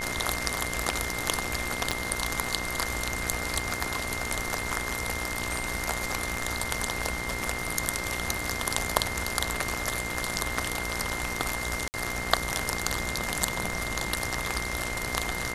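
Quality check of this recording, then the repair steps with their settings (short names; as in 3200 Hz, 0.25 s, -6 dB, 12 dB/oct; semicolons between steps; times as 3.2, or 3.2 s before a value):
buzz 60 Hz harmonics 35 -37 dBFS
crackle 29/s -38 dBFS
tone 2100 Hz -35 dBFS
1.91 pop -11 dBFS
11.88–11.94 gap 59 ms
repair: de-click; de-hum 60 Hz, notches 35; notch 2100 Hz, Q 30; interpolate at 11.88, 59 ms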